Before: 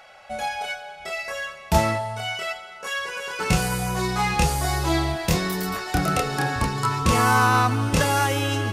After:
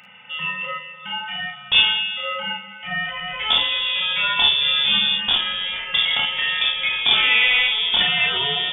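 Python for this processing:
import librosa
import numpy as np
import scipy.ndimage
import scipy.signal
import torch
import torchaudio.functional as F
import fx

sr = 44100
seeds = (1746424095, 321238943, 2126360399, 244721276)

y = fx.freq_invert(x, sr, carrier_hz=3500)
y = fx.room_early_taps(y, sr, ms=(37, 51), db=(-5.5, -5.5))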